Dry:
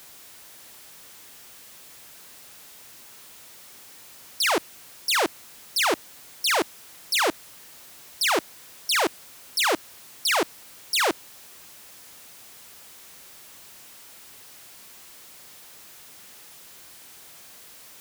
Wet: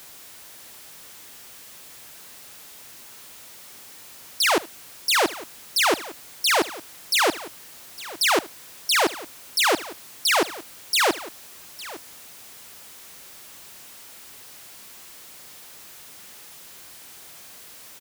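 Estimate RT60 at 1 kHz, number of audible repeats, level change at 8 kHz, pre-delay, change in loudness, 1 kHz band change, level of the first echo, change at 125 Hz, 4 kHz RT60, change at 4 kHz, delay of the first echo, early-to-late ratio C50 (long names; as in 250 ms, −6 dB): no reverb audible, 2, +2.5 dB, no reverb audible, +2.0 dB, +2.5 dB, −20.0 dB, +2.5 dB, no reverb audible, +2.5 dB, 75 ms, no reverb audible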